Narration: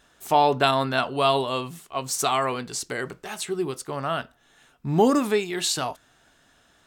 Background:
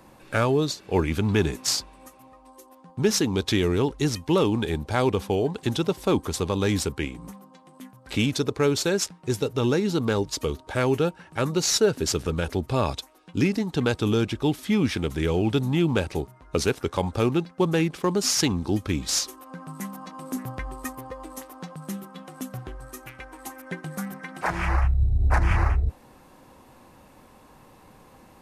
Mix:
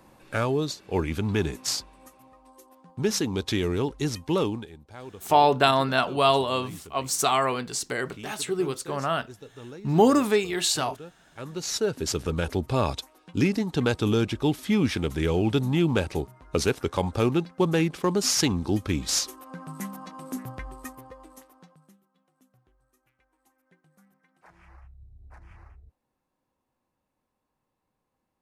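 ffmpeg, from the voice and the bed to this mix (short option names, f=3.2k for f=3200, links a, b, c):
-filter_complex "[0:a]adelay=5000,volume=0.5dB[a];[1:a]volume=15.5dB,afade=t=out:st=4.43:d=0.26:silence=0.158489,afade=t=in:st=11.27:d=1.14:silence=0.112202,afade=t=out:st=19.81:d=2.16:silence=0.0375837[b];[a][b]amix=inputs=2:normalize=0"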